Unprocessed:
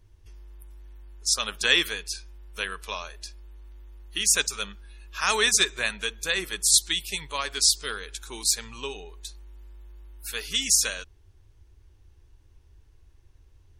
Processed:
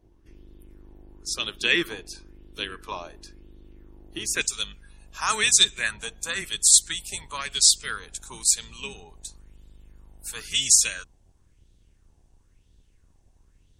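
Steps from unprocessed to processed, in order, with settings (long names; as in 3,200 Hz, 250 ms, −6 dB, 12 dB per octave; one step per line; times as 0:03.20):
sub-octave generator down 1 octave, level +2 dB
parametric band 330 Hz +13.5 dB 0.83 octaves, from 0:04.41 7,900 Hz
auto-filter bell 0.98 Hz 700–3,700 Hz +12 dB
level −7.5 dB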